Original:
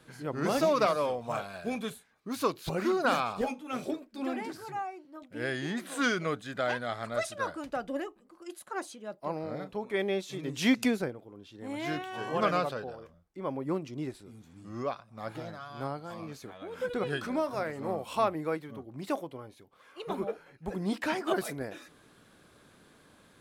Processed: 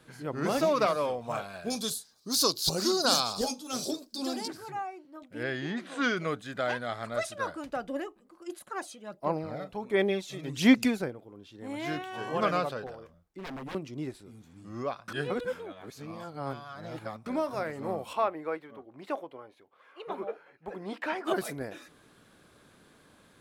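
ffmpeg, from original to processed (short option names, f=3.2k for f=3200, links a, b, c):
-filter_complex "[0:a]asettb=1/sr,asplit=3[a][b][c];[a]atrim=end=1.704[d];[b]atrim=start=1.7:end=4.48,asetpts=PTS-STARTPTS,afade=t=in:d=0.004:c=qsin,afade=t=out:st=2.776:d=0.004:c=qsin,highshelf=f=3.3k:t=q:w=3:g=13.5[e];[c]atrim=start=4.476[f];[d][e]acrossfade=d=0.004:c1=hsin:c2=qsin[g];[g][f]acrossfade=d=0.004:c1=qsin:c2=hsin,asettb=1/sr,asplit=3[h][i][j];[h]atrim=end=5.434[k];[i]atrim=start=5.43:end=6.17,asetpts=PTS-STARTPTS,afade=t=in:d=0.004:c=qsin,afade=t=out:st=0.736:d=0.004:c=qsin,lowpass=4.9k[l];[j]atrim=start=6.166[m];[k][l]acrossfade=d=0.004:c1=hsin:c2=qsin[n];[n][m]acrossfade=d=0.004:c1=qsin:c2=hsin,asplit=3[o][p][q];[o]afade=t=out:st=8.46:d=0.02[r];[p]aphaser=in_gain=1:out_gain=1:delay=1.6:decay=0.46:speed=1.4:type=sinusoidal,afade=t=in:st=8.46:d=0.02,afade=t=out:st=10.98:d=0.02[s];[q]afade=t=in:st=10.98:d=0.02[t];[r][s][t]amix=inputs=3:normalize=0,asettb=1/sr,asplit=3[u][v][w];[u]atrim=end=12.864[x];[v]atrim=start=12.86:end=13.75,asetpts=PTS-STARTPTS,afade=t=in:d=0.004:c=qsin,afade=t=out:st=0.886:d=0.004:c=qsin,aeval=exprs='0.0178*(abs(mod(val(0)/0.0178+3,4)-2)-1)':c=same[y];[w]atrim=start=13.746[z];[x][y]acrossfade=d=0.004:c1=hsin:c2=qsin[aa];[aa][z]acrossfade=d=0.004:c1=qsin:c2=hsin,asplit=3[ab][ac][ad];[ab]afade=t=out:st=18.12:d=0.02[ae];[ac]bass=f=250:g=-15,treble=f=4k:g=-13,afade=t=in:st=18.12:d=0.02,afade=t=out:st=21.24:d=0.02[af];[ad]afade=t=in:st=21.24:d=0.02[ag];[ae][af][ag]amix=inputs=3:normalize=0,asplit=3[ah][ai][aj];[ah]atrim=end=15.082[ak];[ai]atrim=start=15.078:end=17.262,asetpts=PTS-STARTPTS,areverse[al];[aj]atrim=start=17.258[am];[ak][al]acrossfade=d=0.004:c1=hsin:c2=hsin[an];[an][am]acrossfade=d=0.004:c1=hsin:c2=hsin"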